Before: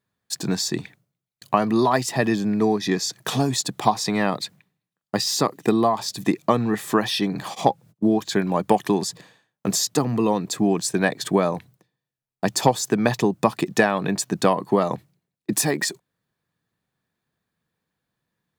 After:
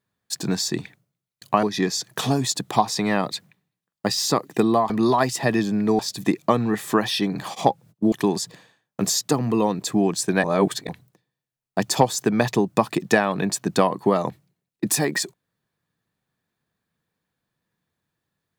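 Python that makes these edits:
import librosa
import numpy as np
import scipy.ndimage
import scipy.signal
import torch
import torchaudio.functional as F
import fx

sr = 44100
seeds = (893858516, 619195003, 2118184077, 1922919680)

y = fx.edit(x, sr, fx.move(start_s=1.63, length_s=1.09, to_s=5.99),
    fx.cut(start_s=8.12, length_s=0.66),
    fx.reverse_span(start_s=11.1, length_s=0.45), tone=tone)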